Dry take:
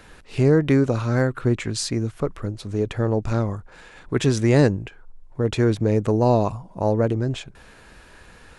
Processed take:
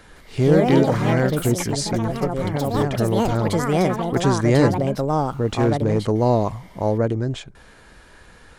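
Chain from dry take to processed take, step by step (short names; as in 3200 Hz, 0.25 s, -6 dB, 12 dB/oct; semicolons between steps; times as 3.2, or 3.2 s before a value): echoes that change speed 0.163 s, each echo +4 st, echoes 3; notch 2600 Hz, Q 12; 5.54–5.99 overloaded stage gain 12 dB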